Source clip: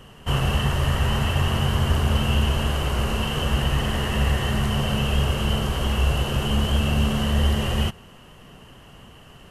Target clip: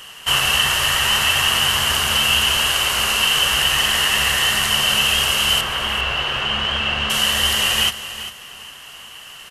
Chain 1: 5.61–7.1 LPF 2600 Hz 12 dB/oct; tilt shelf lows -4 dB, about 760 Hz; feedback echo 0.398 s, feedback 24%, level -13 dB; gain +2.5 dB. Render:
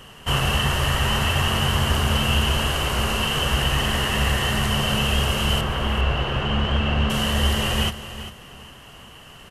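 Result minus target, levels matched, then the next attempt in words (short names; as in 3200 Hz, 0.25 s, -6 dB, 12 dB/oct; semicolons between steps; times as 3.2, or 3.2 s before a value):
1000 Hz band +3.0 dB
5.61–7.1 LPF 2600 Hz 12 dB/oct; tilt shelf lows -14.5 dB, about 760 Hz; feedback echo 0.398 s, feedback 24%, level -13 dB; gain +2.5 dB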